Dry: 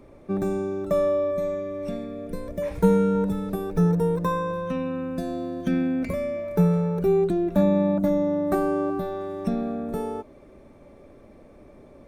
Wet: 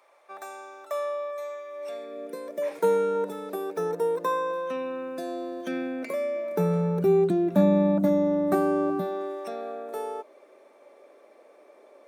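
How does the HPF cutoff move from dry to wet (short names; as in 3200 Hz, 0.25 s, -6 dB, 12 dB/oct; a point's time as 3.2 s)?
HPF 24 dB/oct
1.66 s 730 Hz
2.23 s 330 Hz
6.34 s 330 Hz
7.01 s 120 Hz
8.94 s 120 Hz
9.42 s 430 Hz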